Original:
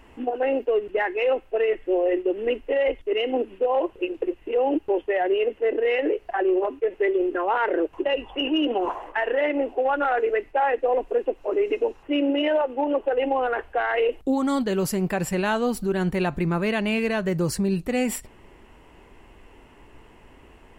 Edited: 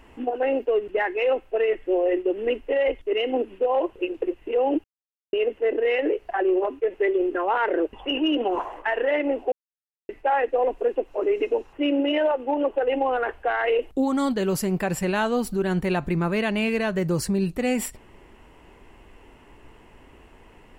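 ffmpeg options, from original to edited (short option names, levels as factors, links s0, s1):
-filter_complex "[0:a]asplit=6[s0][s1][s2][s3][s4][s5];[s0]atrim=end=4.84,asetpts=PTS-STARTPTS,afade=t=out:st=4.836:d=0.004:c=hsin[s6];[s1]atrim=start=4.84:end=5.33,asetpts=PTS-STARTPTS,volume=0[s7];[s2]atrim=start=5.33:end=7.932,asetpts=PTS-STARTPTS,afade=t=in:d=0.004:c=hsin[s8];[s3]atrim=start=8.228:end=9.82,asetpts=PTS-STARTPTS,afade=t=out:st=1.588:d=0.004:c=hsin[s9];[s4]atrim=start=9.82:end=10.39,asetpts=PTS-STARTPTS,volume=0[s10];[s5]atrim=start=10.39,asetpts=PTS-STARTPTS,afade=t=in:d=0.004:c=hsin[s11];[s6][s7][s8]concat=n=3:v=0:a=1[s12];[s9][s10][s11]concat=n=3:v=0:a=1[s13];[s12][s13]acrossfade=d=0.004:c1=hsin:c2=hsin"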